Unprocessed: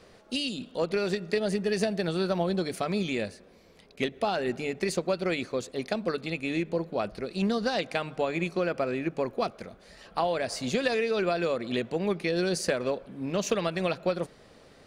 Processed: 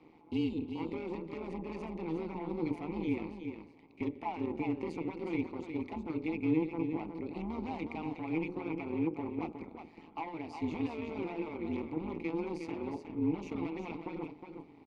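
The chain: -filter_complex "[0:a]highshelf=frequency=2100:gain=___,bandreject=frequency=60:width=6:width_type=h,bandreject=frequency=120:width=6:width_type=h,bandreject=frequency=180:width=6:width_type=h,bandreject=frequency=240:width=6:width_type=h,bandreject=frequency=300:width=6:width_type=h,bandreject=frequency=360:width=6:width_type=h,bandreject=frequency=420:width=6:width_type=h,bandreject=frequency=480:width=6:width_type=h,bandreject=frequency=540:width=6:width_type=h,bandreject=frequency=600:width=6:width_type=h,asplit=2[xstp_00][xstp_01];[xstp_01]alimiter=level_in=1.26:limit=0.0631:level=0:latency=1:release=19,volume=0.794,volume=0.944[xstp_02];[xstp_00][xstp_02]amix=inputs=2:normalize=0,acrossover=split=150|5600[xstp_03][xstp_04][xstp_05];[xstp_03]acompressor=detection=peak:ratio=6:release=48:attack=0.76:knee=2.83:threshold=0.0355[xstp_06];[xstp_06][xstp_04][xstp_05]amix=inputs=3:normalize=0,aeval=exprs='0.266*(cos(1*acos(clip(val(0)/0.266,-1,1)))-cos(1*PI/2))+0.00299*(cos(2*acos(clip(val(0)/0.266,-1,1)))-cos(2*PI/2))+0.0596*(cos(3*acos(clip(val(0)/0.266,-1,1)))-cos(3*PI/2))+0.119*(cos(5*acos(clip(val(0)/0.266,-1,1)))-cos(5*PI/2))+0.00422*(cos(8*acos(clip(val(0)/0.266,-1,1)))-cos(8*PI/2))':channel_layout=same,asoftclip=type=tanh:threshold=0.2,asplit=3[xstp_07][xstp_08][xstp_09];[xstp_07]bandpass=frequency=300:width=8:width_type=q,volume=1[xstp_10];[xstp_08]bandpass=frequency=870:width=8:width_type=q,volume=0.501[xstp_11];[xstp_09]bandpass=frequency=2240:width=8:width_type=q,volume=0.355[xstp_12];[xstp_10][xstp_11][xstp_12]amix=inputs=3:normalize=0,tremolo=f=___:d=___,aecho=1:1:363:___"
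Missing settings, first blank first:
-7, 160, 0.71, 0.422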